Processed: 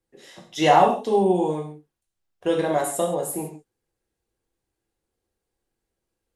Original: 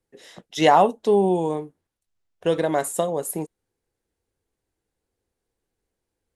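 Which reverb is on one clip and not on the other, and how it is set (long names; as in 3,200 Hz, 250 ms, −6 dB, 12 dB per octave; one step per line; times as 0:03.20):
reverb whose tail is shaped and stops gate 190 ms falling, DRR −1 dB
level −3.5 dB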